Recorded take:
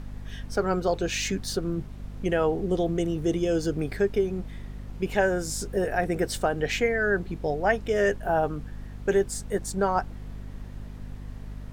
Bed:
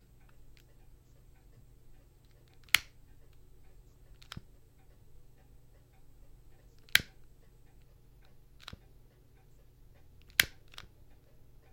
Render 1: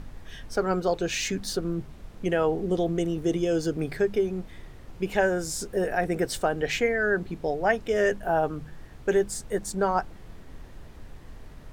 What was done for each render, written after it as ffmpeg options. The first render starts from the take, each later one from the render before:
-af "bandreject=f=50:t=h:w=4,bandreject=f=100:t=h:w=4,bandreject=f=150:t=h:w=4,bandreject=f=200:t=h:w=4,bandreject=f=250:t=h:w=4"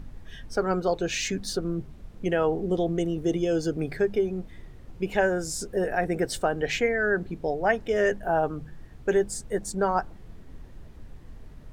-af "afftdn=nr=6:nf=-46"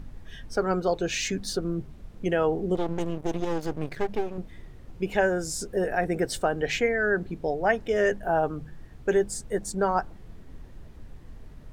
-filter_complex "[0:a]asettb=1/sr,asplit=3[a][b][c];[a]atrim=end=2.754[d];[b]atrim=start=2.75:end=4.38,asetpts=PTS-STARTPTS,afade=t=in:d=0.004:c=qsin,afade=t=out:st=1.626:d=0.004:c=qsin,aeval=exprs='max(val(0),0)':c=same[e];[c]atrim=start=4.376[f];[d][e]acrossfade=d=0.004:c1=hsin:c2=qsin[g];[g][f]acrossfade=d=0.004:c1=qsin:c2=hsin"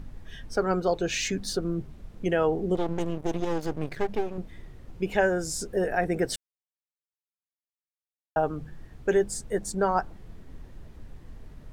-filter_complex "[0:a]asplit=3[a][b][c];[a]atrim=end=6.36,asetpts=PTS-STARTPTS,afade=t=out:st=6.356:d=0.004:c=hsin[d];[b]atrim=start=6.36:end=8.36,asetpts=PTS-STARTPTS,volume=0[e];[c]atrim=start=8.36,asetpts=PTS-STARTPTS,afade=t=in:d=0.004:c=hsin[f];[d][e][f]concat=n=3:v=0:a=1"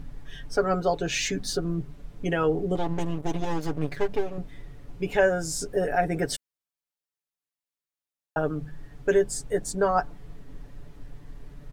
-af "aecho=1:1:7:0.65"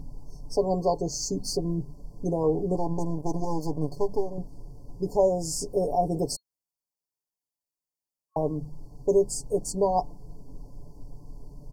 -af "afftfilt=real='re*(1-between(b*sr/4096,1100,4300))':imag='im*(1-between(b*sr/4096,1100,4300))':win_size=4096:overlap=0.75"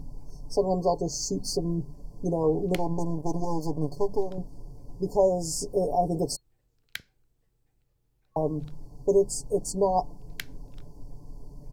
-filter_complex "[1:a]volume=-12.5dB[a];[0:a][a]amix=inputs=2:normalize=0"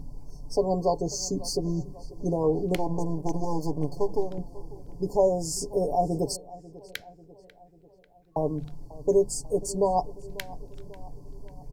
-filter_complex "[0:a]asplit=2[a][b];[b]adelay=543,lowpass=f=3.3k:p=1,volume=-19dB,asplit=2[c][d];[d]adelay=543,lowpass=f=3.3k:p=1,volume=0.55,asplit=2[e][f];[f]adelay=543,lowpass=f=3.3k:p=1,volume=0.55,asplit=2[g][h];[h]adelay=543,lowpass=f=3.3k:p=1,volume=0.55,asplit=2[i][j];[j]adelay=543,lowpass=f=3.3k:p=1,volume=0.55[k];[a][c][e][g][i][k]amix=inputs=6:normalize=0"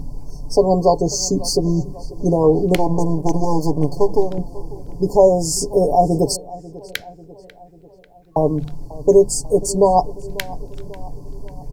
-af "volume=10.5dB,alimiter=limit=-1dB:level=0:latency=1"

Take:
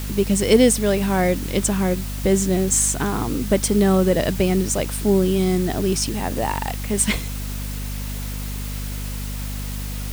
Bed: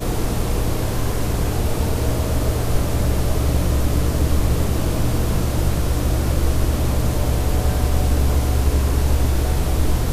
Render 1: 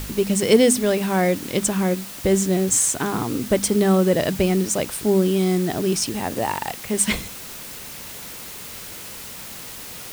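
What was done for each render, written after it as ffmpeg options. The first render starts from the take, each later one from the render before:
-af "bandreject=f=50:t=h:w=4,bandreject=f=100:t=h:w=4,bandreject=f=150:t=h:w=4,bandreject=f=200:t=h:w=4,bandreject=f=250:t=h:w=4"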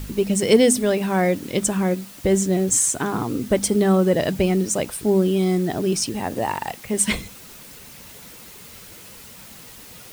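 -af "afftdn=nr=7:nf=-36"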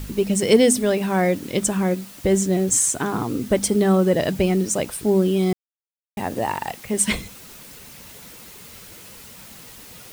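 -filter_complex "[0:a]asplit=3[a][b][c];[a]atrim=end=5.53,asetpts=PTS-STARTPTS,afade=t=out:st=5.526:d=0.004:c=hsin[d];[b]atrim=start=5.53:end=6.17,asetpts=PTS-STARTPTS,volume=0[e];[c]atrim=start=6.17,asetpts=PTS-STARTPTS,afade=t=in:d=0.004:c=hsin[f];[d][e][f]concat=n=3:v=0:a=1"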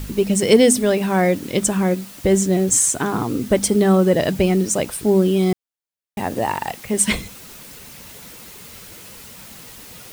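-af "volume=2.5dB,alimiter=limit=-1dB:level=0:latency=1"

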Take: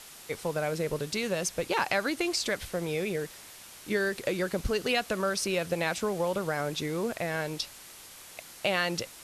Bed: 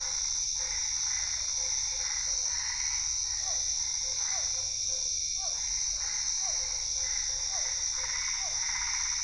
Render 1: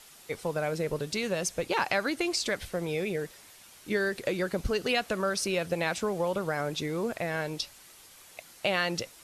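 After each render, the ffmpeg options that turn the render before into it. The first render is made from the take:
-af "afftdn=nr=6:nf=-49"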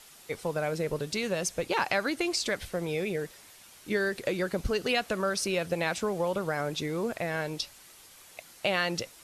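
-af anull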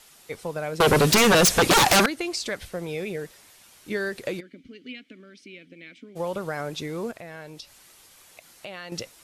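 -filter_complex "[0:a]asettb=1/sr,asplit=3[a][b][c];[a]atrim=end=0.804[d];[b]atrim=start=0.8:end=2.06,asetpts=PTS-STARTPTS,afade=t=in:d=0.004:c=qsin,afade=t=out:st=1.256:d=0.004:c=qsin,aeval=exprs='0.224*sin(PI/2*7.08*val(0)/0.224)':c=same[e];[c]atrim=start=2.056[f];[d][e]acrossfade=d=0.004:c1=hsin:c2=qsin[g];[g][f]acrossfade=d=0.004:c1=qsin:c2=hsin,asplit=3[h][i][j];[h]afade=t=out:st=4.39:d=0.02[k];[i]asplit=3[l][m][n];[l]bandpass=f=270:t=q:w=8,volume=0dB[o];[m]bandpass=f=2.29k:t=q:w=8,volume=-6dB[p];[n]bandpass=f=3.01k:t=q:w=8,volume=-9dB[q];[o][p][q]amix=inputs=3:normalize=0,afade=t=in:st=4.39:d=0.02,afade=t=out:st=6.15:d=0.02[r];[j]afade=t=in:st=6.15:d=0.02[s];[k][r][s]amix=inputs=3:normalize=0,asettb=1/sr,asplit=3[t][u][v];[t]atrim=end=7.114[w];[u]atrim=start=7.11:end=8.92,asetpts=PTS-STARTPTS,afade=t=in:d=0.004:c=qsin,afade=t=out:st=1.806:d=0.004:c=qsin,acompressor=threshold=-43dB:ratio=2:attack=3.2:release=140:knee=1:detection=peak[x];[v]atrim=start=8.916[y];[w][x]acrossfade=d=0.004:c1=hsin:c2=qsin[z];[z][y]acrossfade=d=0.004:c1=qsin:c2=hsin"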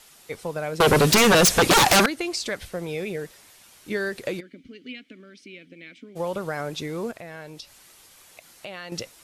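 -af "volume=1dB"

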